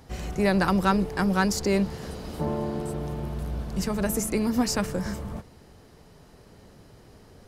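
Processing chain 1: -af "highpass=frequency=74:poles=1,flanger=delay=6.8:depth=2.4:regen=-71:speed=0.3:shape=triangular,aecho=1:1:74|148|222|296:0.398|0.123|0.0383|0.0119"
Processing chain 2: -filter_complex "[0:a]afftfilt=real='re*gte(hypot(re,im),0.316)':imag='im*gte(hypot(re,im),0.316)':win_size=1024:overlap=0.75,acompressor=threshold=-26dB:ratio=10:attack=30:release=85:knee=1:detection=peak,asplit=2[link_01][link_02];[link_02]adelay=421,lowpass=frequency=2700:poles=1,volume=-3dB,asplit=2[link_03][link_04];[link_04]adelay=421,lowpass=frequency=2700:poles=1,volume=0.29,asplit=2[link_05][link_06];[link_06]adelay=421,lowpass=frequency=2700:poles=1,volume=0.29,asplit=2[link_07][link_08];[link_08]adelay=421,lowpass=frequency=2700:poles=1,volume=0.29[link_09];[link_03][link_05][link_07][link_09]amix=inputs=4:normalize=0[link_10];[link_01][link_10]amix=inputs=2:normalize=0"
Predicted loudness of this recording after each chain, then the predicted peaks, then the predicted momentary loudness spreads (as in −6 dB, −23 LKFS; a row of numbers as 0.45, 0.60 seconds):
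−31.0, −30.0 LKFS; −12.5, −13.5 dBFS; 12, 18 LU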